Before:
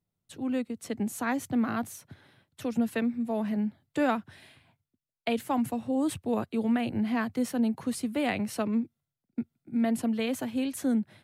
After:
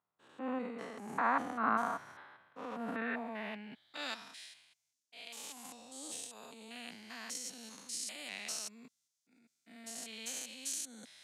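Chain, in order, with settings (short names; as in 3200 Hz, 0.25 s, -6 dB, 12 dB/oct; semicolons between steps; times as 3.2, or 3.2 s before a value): stepped spectrum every 0.2 s; transient shaper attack -7 dB, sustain +6 dB; band-pass sweep 1100 Hz -> 6300 Hz, 2.84–4.35; gain +12 dB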